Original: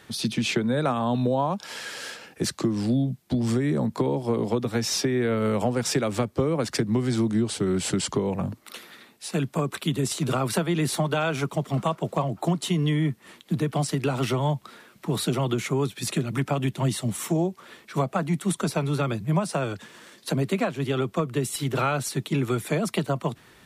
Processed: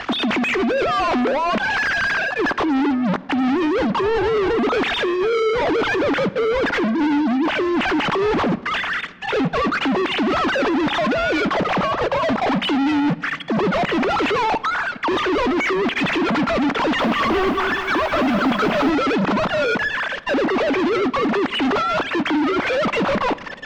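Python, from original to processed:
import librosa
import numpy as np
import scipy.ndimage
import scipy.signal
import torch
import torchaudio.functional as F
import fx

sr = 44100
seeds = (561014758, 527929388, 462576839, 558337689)

y = fx.sine_speech(x, sr)
y = fx.env_lowpass_down(y, sr, base_hz=2300.0, full_db=-22.0)
y = fx.peak_eq(y, sr, hz=1300.0, db=6.0, octaves=2.6)
y = fx.over_compress(y, sr, threshold_db=-25.0, ratio=-0.5)
y = fx.leveller(y, sr, passes=5)
y = np.clip(y, -10.0 ** (-24.5 / 20.0), 10.0 ** (-24.5 / 20.0))
y = fx.air_absorb(y, sr, metres=200.0)
y = fx.room_shoebox(y, sr, seeds[0], volume_m3=2000.0, walls='mixed', distance_m=0.31)
y = fx.echo_crushed(y, sr, ms=205, feedback_pct=55, bits=9, wet_db=-6.5, at=(16.78, 18.9))
y = y * 10.0 ** (7.0 / 20.0)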